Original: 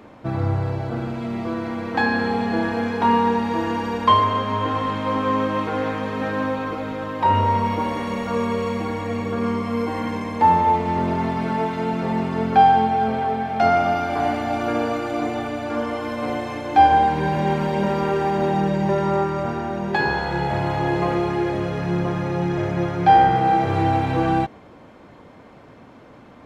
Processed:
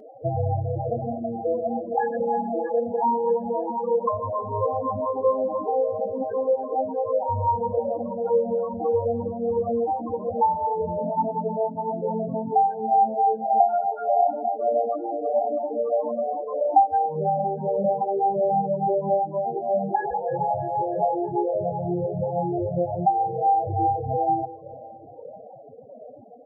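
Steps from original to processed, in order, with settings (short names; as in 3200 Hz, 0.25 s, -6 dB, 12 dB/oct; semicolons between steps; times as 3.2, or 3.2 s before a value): reverb removal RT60 0.64 s; LPF 1700 Hz 12 dB/oct; band shelf 600 Hz +9.5 dB 1.1 oct; compressor 5:1, threshold -22 dBFS, peak gain reduction 19 dB; loudest bins only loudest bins 8; feedback echo 0.319 s, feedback 50%, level -17 dB; cascading flanger rising 1.6 Hz; gain +6.5 dB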